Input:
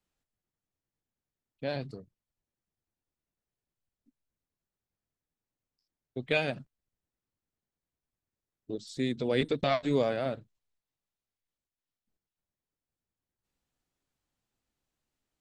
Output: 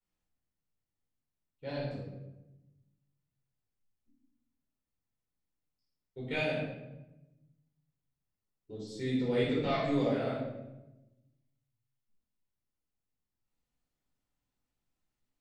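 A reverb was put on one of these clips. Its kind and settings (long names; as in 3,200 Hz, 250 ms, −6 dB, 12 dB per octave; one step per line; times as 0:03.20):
rectangular room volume 390 cubic metres, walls mixed, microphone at 4.5 metres
level −14 dB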